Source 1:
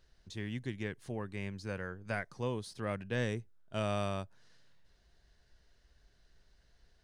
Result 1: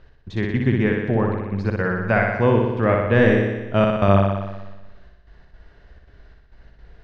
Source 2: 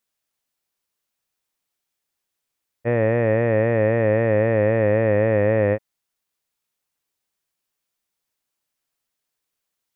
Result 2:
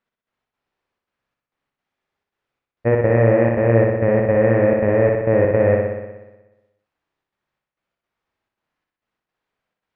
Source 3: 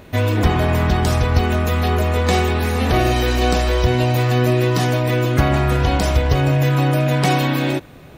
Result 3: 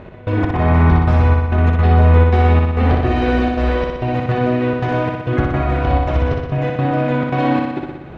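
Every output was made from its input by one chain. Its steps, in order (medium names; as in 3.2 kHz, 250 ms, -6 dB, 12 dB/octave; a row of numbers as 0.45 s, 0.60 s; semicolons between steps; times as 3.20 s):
low-pass 2 kHz 12 dB/octave; compression, threshold -19 dBFS; trance gate "x..xx.xxxxx.xx" 168 bpm -24 dB; flutter echo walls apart 10.4 m, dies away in 1.1 s; peak normalisation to -2 dBFS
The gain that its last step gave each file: +18.0 dB, +6.5 dB, +5.0 dB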